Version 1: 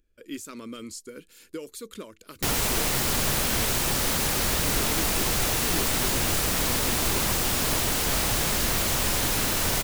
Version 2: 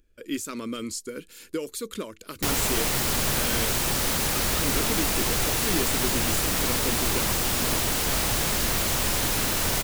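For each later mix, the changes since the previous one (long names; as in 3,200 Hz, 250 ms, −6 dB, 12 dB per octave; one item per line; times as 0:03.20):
speech +6.0 dB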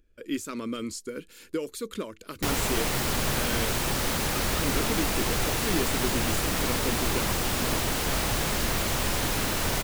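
master: add high-shelf EQ 4,100 Hz −6 dB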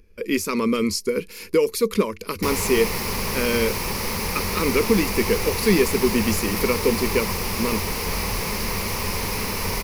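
speech +10.5 dB
master: add EQ curve with evenly spaced ripples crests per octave 0.85, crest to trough 10 dB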